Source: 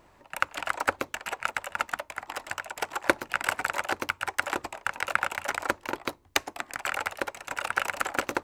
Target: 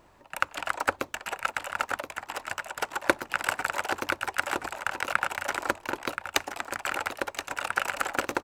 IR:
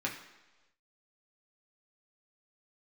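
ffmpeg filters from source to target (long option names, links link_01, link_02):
-filter_complex "[0:a]equalizer=frequency=2100:width_type=o:width=0.27:gain=-2.5,asplit=2[link_01][link_02];[link_02]aecho=0:1:1026:0.355[link_03];[link_01][link_03]amix=inputs=2:normalize=0"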